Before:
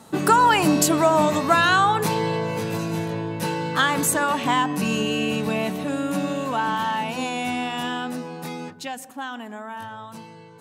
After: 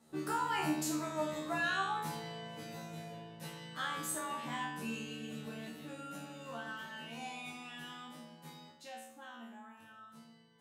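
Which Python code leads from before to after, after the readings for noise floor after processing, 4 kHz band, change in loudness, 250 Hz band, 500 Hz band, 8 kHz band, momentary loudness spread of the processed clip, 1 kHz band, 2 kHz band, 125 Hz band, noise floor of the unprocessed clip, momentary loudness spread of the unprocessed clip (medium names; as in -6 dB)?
-59 dBFS, -16.5 dB, -18.0 dB, -17.5 dB, -19.5 dB, -16.5 dB, 18 LU, -18.5 dB, -15.5 dB, -19.0 dB, -44 dBFS, 17 LU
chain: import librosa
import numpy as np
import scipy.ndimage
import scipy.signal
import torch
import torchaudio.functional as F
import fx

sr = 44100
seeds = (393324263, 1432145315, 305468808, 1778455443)

y = fx.peak_eq(x, sr, hz=1000.0, db=-3.5, octaves=0.33)
y = fx.comb_fb(y, sr, f0_hz=77.0, decay_s=0.56, harmonics='all', damping=0.0, mix_pct=100)
y = y + 10.0 ** (-16.5 / 20.0) * np.pad(y, (int(104 * sr / 1000.0), 0))[:len(y)]
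y = y * librosa.db_to_amplitude(-5.5)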